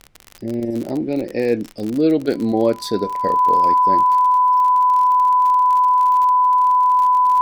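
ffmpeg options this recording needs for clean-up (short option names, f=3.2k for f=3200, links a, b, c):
-af "adeclick=t=4,bandreject=f=1k:w=30,agate=range=-21dB:threshold=-21dB"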